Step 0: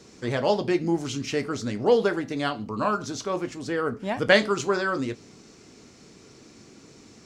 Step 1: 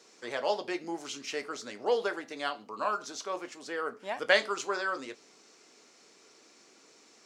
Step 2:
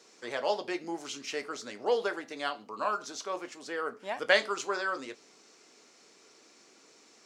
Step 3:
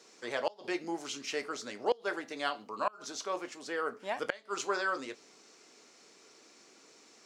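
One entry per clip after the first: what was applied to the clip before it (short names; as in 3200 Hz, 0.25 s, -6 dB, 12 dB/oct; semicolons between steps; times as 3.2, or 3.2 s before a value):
HPF 520 Hz 12 dB/oct; gain -4.5 dB
nothing audible
flipped gate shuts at -18 dBFS, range -26 dB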